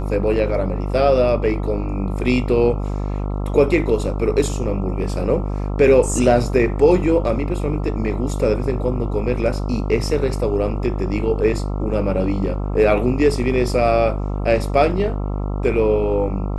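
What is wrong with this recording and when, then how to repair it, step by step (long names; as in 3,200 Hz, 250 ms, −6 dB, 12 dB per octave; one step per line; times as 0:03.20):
mains buzz 50 Hz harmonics 27 −23 dBFS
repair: hum removal 50 Hz, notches 27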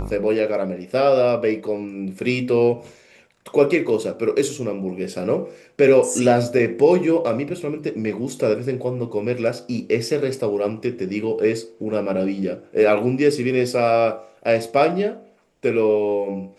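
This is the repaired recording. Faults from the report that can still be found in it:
none of them is left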